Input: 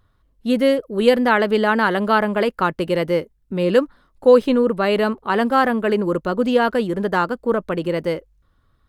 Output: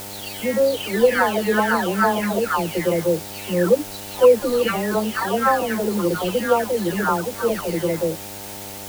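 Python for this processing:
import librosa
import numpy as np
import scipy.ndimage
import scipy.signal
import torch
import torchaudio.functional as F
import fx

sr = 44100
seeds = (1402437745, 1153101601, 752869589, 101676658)

y = fx.spec_delay(x, sr, highs='early', ms=703)
y = fx.quant_dither(y, sr, seeds[0], bits=6, dither='triangular')
y = fx.dmg_buzz(y, sr, base_hz=100.0, harmonics=9, level_db=-39.0, tilt_db=-1, odd_only=False)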